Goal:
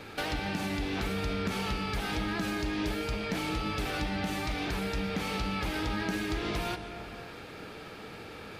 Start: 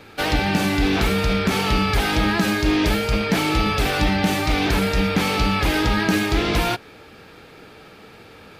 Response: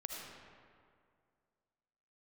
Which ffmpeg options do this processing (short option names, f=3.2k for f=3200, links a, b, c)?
-filter_complex "[0:a]acompressor=threshold=-34dB:ratio=3,asplit=2[a][b];[1:a]atrim=start_sample=2205,afade=t=out:st=0.36:d=0.01,atrim=end_sample=16317,asetrate=22932,aresample=44100[c];[b][c]afir=irnorm=-1:irlink=0,volume=-6dB[d];[a][d]amix=inputs=2:normalize=0,volume=-4dB"